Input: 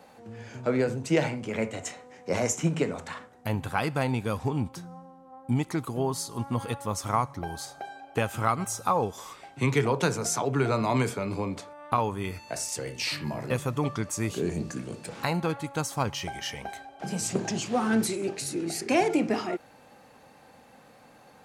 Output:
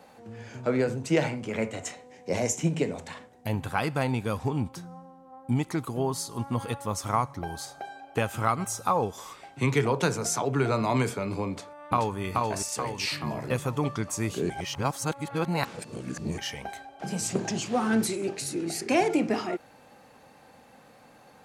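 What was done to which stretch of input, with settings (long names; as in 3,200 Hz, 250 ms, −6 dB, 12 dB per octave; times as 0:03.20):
0:01.95–0:03.53: parametric band 1,300 Hz −9.5 dB 0.61 octaves
0:11.48–0:12.19: delay throw 430 ms, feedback 50%, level −2 dB
0:14.50–0:16.38: reverse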